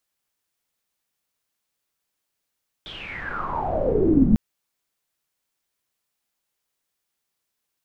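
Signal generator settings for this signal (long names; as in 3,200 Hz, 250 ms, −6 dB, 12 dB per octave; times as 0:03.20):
filter sweep on noise pink, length 1.50 s lowpass, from 3,600 Hz, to 200 Hz, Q 12, exponential, gain ramp +25.5 dB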